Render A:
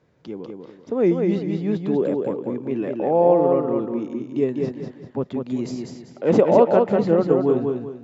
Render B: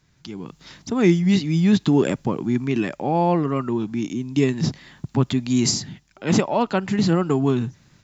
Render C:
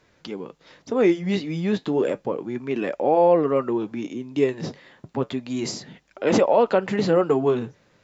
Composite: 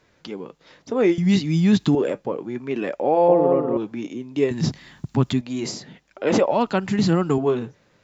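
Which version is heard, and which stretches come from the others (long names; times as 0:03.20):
C
0:01.18–0:01.95: punch in from B
0:03.28–0:03.77: punch in from A
0:04.51–0:05.41: punch in from B
0:06.51–0:07.38: punch in from B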